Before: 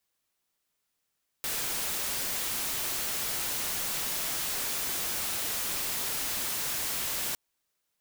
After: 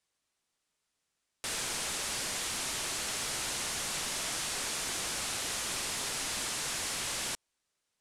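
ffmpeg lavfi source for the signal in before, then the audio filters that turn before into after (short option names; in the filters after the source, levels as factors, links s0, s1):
-f lavfi -i "anoisesrc=c=white:a=0.0435:d=5.91:r=44100:seed=1"
-af "lowpass=f=10000:w=0.5412,lowpass=f=10000:w=1.3066"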